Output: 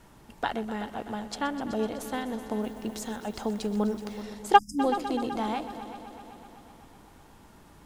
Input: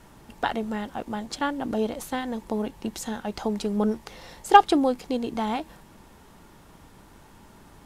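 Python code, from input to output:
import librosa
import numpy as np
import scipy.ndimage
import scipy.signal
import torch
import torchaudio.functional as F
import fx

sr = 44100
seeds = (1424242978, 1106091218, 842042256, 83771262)

y = fx.echo_heads(x, sr, ms=126, heads='all three', feedback_pct=62, wet_db=-17)
y = fx.dmg_noise_colour(y, sr, seeds[0], colour='violet', level_db=-62.0, at=(2.6, 4.21), fade=0.02)
y = fx.spec_erase(y, sr, start_s=4.58, length_s=0.21, low_hz=300.0, high_hz=4900.0)
y = y * librosa.db_to_amplitude(-3.5)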